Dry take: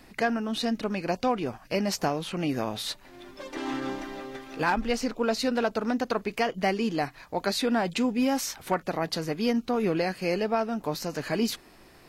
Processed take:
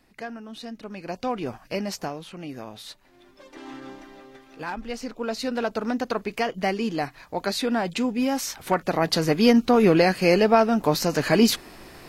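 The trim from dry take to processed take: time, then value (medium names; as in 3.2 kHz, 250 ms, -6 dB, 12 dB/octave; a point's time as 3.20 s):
0.77 s -9.5 dB
1.52 s +1.5 dB
2.38 s -8 dB
4.57 s -8 dB
5.79 s +1 dB
8.37 s +1 dB
9.30 s +9 dB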